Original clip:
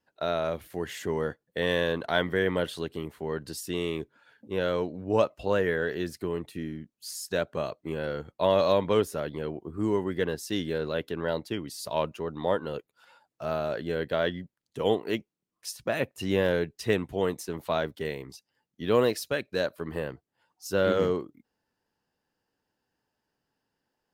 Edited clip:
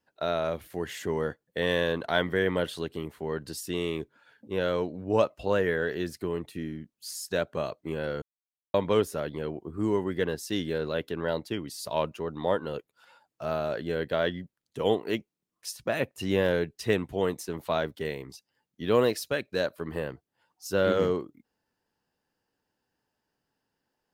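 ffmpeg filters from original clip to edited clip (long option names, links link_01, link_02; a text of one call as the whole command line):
ffmpeg -i in.wav -filter_complex "[0:a]asplit=3[link_01][link_02][link_03];[link_01]atrim=end=8.22,asetpts=PTS-STARTPTS,afade=type=out:start_time=8.216:duration=0.004:curve=hsin[link_04];[link_02]atrim=start=8.22:end=8.74,asetpts=PTS-STARTPTS,volume=0[link_05];[link_03]atrim=start=8.74,asetpts=PTS-STARTPTS,afade=type=in:duration=0.004:curve=hsin[link_06];[link_04][link_05][link_06]concat=n=3:v=0:a=1" out.wav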